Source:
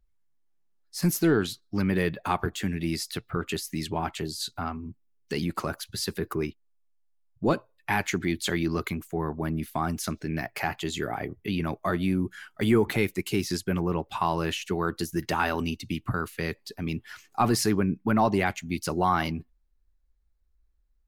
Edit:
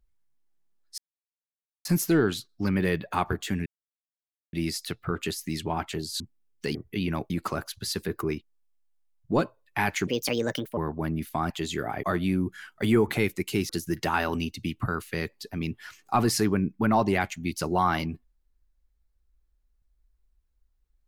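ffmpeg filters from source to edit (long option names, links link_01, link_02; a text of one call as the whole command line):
ffmpeg -i in.wav -filter_complex "[0:a]asplit=11[link_01][link_02][link_03][link_04][link_05][link_06][link_07][link_08][link_09][link_10][link_11];[link_01]atrim=end=0.98,asetpts=PTS-STARTPTS,afade=type=out:start_time=0.976:duration=0.004:curve=hsin,apad=pad_dur=0.87[link_12];[link_02]atrim=start=0.98:end=2.79,asetpts=PTS-STARTPTS,afade=type=in:duration=0.004:curve=hsin,afade=type=out:start_time=1.806:duration=0.004:curve=hsin,apad=pad_dur=0.87[link_13];[link_03]atrim=start=2.79:end=4.462,asetpts=PTS-STARTPTS,afade=type=in:duration=0.004:curve=hsin[link_14];[link_04]atrim=start=4.868:end=5.422[link_15];[link_05]atrim=start=11.268:end=11.822[link_16];[link_06]atrim=start=5.418:end=8.194[link_17];[link_07]atrim=start=8.19:end=9.18,asetpts=PTS-STARTPTS,asetrate=62181,aresample=44100[link_18];[link_08]atrim=start=9.176:end=9.912[link_19];[link_09]atrim=start=10.738:end=11.272[link_20];[link_10]atrim=start=11.818:end=13.482[link_21];[link_11]atrim=start=14.948[link_22];[link_12][link_13][link_14]concat=n=3:v=0:a=1[link_23];[link_23][link_15]acrossfade=duration=0.004:curve1=hsin:curve2=hsin[link_24];[link_24][link_16]acrossfade=duration=0.004:curve1=hsin:curve2=hsin[link_25];[link_25][link_17]acrossfade=duration=0.004:curve1=hsin:curve2=hsin[link_26];[link_26][link_18]acrossfade=duration=0.004:curve1=hsin:curve2=hsin[link_27];[link_27][link_19]acrossfade=duration=0.004:curve1=hsin:curve2=hsin[link_28];[link_28][link_20]acrossfade=duration=0.004:curve1=hsin:curve2=hsin[link_29];[link_29][link_21]acrossfade=duration=0.004:curve1=hsin:curve2=hsin[link_30];[link_30][link_22]acrossfade=duration=0.004:curve1=hsin:curve2=hsin" out.wav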